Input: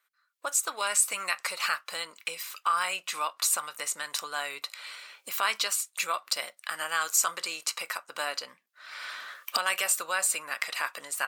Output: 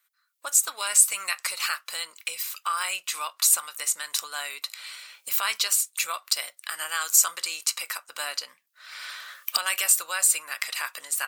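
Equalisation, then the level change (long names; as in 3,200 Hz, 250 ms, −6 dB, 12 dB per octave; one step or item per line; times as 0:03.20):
spectral tilt +3 dB per octave
−2.5 dB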